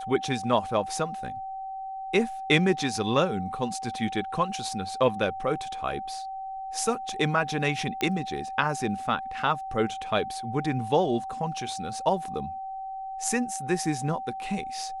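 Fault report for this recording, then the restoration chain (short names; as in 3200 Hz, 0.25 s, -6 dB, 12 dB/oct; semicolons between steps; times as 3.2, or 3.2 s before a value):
tone 770 Hz -33 dBFS
8.01 pop -14 dBFS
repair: de-click; notch 770 Hz, Q 30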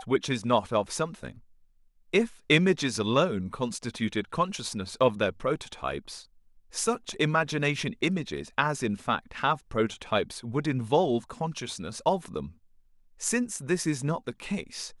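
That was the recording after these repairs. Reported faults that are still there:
none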